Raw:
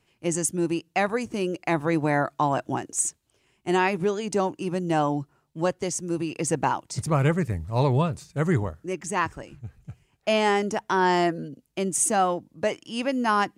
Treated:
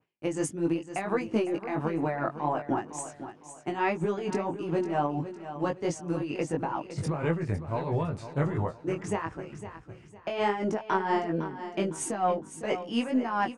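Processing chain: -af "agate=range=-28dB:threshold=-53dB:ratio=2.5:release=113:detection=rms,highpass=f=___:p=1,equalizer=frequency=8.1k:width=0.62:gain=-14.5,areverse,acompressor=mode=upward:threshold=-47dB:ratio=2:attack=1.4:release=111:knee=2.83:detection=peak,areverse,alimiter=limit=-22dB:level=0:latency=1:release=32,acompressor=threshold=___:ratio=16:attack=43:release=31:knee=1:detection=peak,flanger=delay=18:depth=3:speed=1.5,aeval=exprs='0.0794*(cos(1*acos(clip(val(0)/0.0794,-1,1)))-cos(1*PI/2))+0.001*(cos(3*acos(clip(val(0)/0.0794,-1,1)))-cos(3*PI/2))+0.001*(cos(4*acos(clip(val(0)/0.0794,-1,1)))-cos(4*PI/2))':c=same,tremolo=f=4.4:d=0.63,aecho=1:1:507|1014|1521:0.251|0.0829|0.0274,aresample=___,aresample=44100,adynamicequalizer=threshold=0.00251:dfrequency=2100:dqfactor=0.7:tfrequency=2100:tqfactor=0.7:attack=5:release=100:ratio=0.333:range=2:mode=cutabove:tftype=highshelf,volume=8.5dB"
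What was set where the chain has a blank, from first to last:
170, -32dB, 22050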